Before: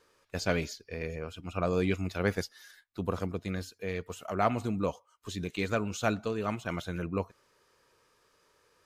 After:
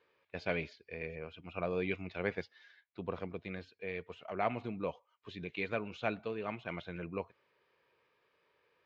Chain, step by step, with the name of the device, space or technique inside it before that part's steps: guitar cabinet (cabinet simulation 92–3600 Hz, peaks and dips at 100 Hz -7 dB, 200 Hz -4 dB, 280 Hz -4 dB, 1.3 kHz -5 dB, 2.3 kHz +5 dB); trim -5 dB

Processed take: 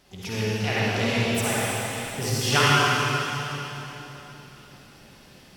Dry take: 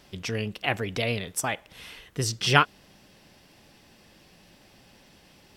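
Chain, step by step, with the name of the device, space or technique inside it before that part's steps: shimmer-style reverb (harmony voices +12 st -11 dB; reverberation RT60 3.6 s, pre-delay 48 ms, DRR -8 dB); trim -4.5 dB

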